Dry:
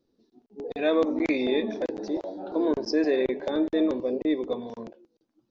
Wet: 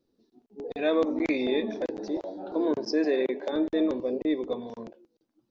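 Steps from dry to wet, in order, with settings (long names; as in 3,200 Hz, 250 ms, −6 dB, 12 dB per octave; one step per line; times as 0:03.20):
0:02.63–0:03.51: high-pass filter 92 Hz → 250 Hz 24 dB per octave
level −1.5 dB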